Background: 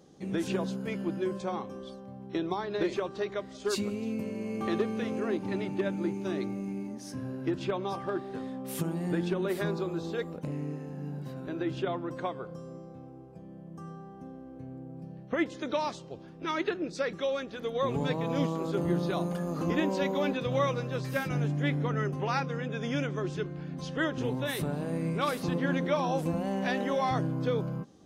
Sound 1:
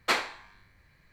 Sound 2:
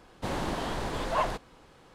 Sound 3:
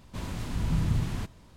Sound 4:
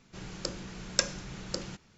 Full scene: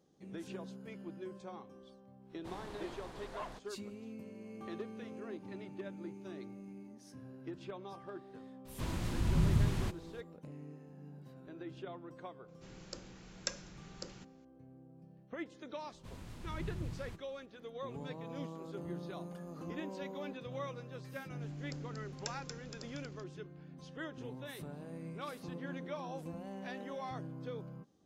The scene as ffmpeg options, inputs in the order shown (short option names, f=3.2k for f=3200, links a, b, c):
-filter_complex "[3:a]asplit=2[a][b];[4:a]asplit=2[c][d];[0:a]volume=-14dB[e];[d]asplit=8[f][g][h][i][j][k][l][m];[g]adelay=234,afreqshift=-110,volume=-5.5dB[n];[h]adelay=468,afreqshift=-220,volume=-10.5dB[o];[i]adelay=702,afreqshift=-330,volume=-15.6dB[p];[j]adelay=936,afreqshift=-440,volume=-20.6dB[q];[k]adelay=1170,afreqshift=-550,volume=-25.6dB[r];[l]adelay=1404,afreqshift=-660,volume=-30.7dB[s];[m]adelay=1638,afreqshift=-770,volume=-35.7dB[t];[f][n][o][p][q][r][s][t]amix=inputs=8:normalize=0[u];[2:a]atrim=end=1.94,asetpts=PTS-STARTPTS,volume=-16.5dB,afade=t=in:d=0.1,afade=t=out:st=1.84:d=0.1,adelay=2220[v];[a]atrim=end=1.56,asetpts=PTS-STARTPTS,volume=-2.5dB,afade=t=in:d=0.004:c=hsin,afade=t=out:st=1.556:d=0.004:c=hsin,adelay=8650[w];[c]atrim=end=1.97,asetpts=PTS-STARTPTS,volume=-11.5dB,afade=t=in:d=0.004:c=hsin,afade=t=out:st=1.966:d=0.004:c=hsin,adelay=12480[x];[b]atrim=end=1.56,asetpts=PTS-STARTPTS,volume=-14.5dB,afade=t=in:d=0.004:c=hsin,afade=t=out:st=1.556:d=0.004:c=hsin,adelay=15900[y];[u]atrim=end=1.97,asetpts=PTS-STARTPTS,volume=-17dB,afade=t=in:d=0.004:c=hsin,afade=t=out:st=1.966:d=0.004:c=hsin,adelay=21270[z];[e][v][w][x][y][z]amix=inputs=6:normalize=0"